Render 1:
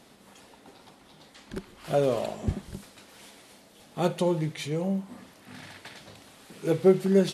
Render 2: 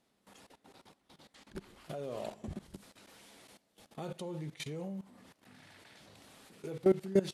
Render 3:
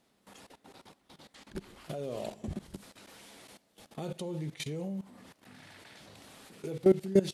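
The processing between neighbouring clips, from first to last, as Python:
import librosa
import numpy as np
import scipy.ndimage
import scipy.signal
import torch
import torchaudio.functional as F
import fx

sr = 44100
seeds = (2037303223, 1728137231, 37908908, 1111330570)

y1 = fx.level_steps(x, sr, step_db=18)
y1 = y1 * 10.0 ** (-4.0 / 20.0)
y2 = fx.dynamic_eq(y1, sr, hz=1200.0, q=0.82, threshold_db=-53.0, ratio=4.0, max_db=-6)
y2 = y2 * 10.0 ** (4.5 / 20.0)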